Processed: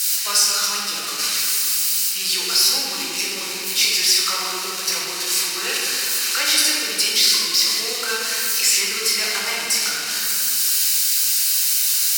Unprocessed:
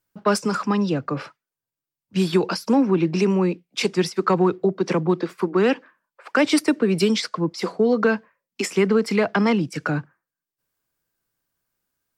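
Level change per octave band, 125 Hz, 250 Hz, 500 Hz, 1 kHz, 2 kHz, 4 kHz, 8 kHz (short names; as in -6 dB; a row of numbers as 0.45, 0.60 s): under -20 dB, -18.5 dB, -13.5 dB, -3.0 dB, +5.0 dB, +16.0 dB, +20.5 dB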